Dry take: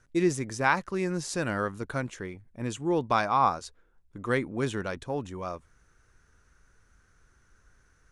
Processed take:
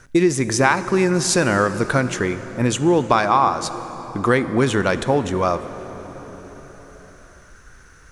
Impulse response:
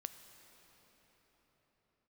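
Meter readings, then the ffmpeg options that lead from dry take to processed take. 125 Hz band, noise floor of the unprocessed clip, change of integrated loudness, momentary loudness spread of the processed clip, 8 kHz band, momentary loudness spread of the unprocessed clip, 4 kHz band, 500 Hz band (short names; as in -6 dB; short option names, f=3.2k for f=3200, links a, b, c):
+11.5 dB, -65 dBFS, +10.5 dB, 16 LU, +15.0 dB, 13 LU, +13.5 dB, +11.5 dB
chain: -filter_complex "[0:a]acompressor=threshold=-30dB:ratio=5,asplit=2[a][b];[1:a]atrim=start_sample=2205,lowshelf=f=130:g=-5.5[c];[b][c]afir=irnorm=-1:irlink=0,volume=11dB[d];[a][d]amix=inputs=2:normalize=0,volume=7dB"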